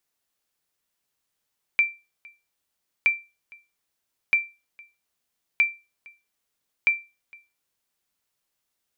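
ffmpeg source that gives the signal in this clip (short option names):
-f lavfi -i "aevalsrc='0.266*(sin(2*PI*2350*mod(t,1.27))*exp(-6.91*mod(t,1.27)/0.27)+0.0447*sin(2*PI*2350*max(mod(t,1.27)-0.46,0))*exp(-6.91*max(mod(t,1.27)-0.46,0)/0.27))':d=6.35:s=44100"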